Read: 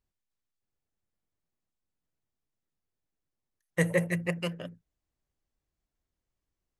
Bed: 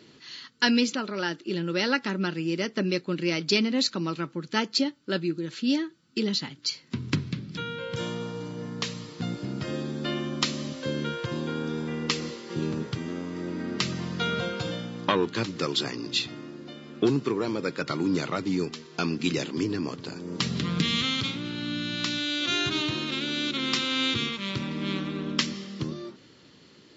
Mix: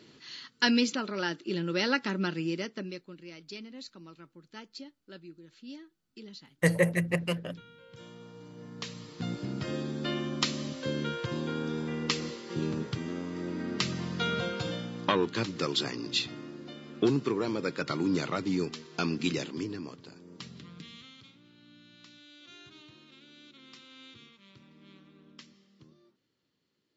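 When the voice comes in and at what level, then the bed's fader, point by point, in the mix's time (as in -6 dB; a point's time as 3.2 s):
2.85 s, +2.0 dB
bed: 2.45 s -2.5 dB
3.2 s -20 dB
7.83 s -20 dB
9.33 s -2.5 dB
19.22 s -2.5 dB
21.14 s -25.5 dB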